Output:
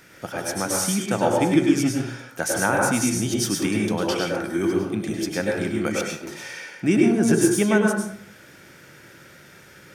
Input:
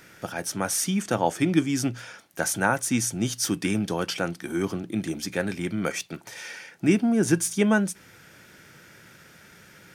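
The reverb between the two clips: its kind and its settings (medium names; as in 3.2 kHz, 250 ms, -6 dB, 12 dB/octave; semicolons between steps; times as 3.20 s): plate-style reverb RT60 0.63 s, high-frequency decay 0.5×, pre-delay 90 ms, DRR -1 dB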